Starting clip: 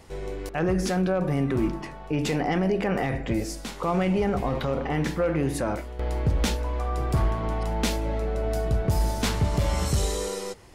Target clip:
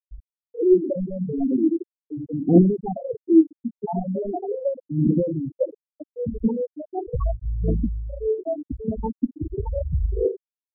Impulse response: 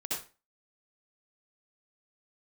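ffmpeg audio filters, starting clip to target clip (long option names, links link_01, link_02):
-filter_complex "[0:a]equalizer=frequency=310:width_type=o:width=2.3:gain=11.5,asplit=2[link_01][link_02];[1:a]atrim=start_sample=2205,asetrate=29106,aresample=44100[link_03];[link_02][link_03]afir=irnorm=-1:irlink=0,volume=-19.5dB[link_04];[link_01][link_04]amix=inputs=2:normalize=0,volume=10.5dB,asoftclip=hard,volume=-10.5dB,aemphasis=mode=production:type=50kf,asplit=2[link_05][link_06];[link_06]adelay=298,lowpass=frequency=810:poles=1,volume=-20dB,asplit=2[link_07][link_08];[link_08]adelay=298,lowpass=frequency=810:poles=1,volume=0.21[link_09];[link_05][link_07][link_09]amix=inputs=3:normalize=0,aphaser=in_gain=1:out_gain=1:delay=4.8:decay=0.75:speed=0.39:type=triangular,afftfilt=real='re*gte(hypot(re,im),0.891)':imag='im*gte(hypot(re,im),0.891)':win_size=1024:overlap=0.75,volume=-7dB"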